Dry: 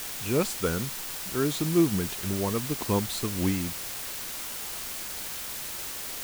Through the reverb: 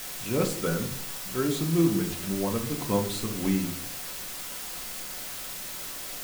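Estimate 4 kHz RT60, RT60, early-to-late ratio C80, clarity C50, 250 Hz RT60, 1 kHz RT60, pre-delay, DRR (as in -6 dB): 0.35 s, 0.60 s, 14.5 dB, 10.5 dB, 0.80 s, 0.50 s, 4 ms, 1.5 dB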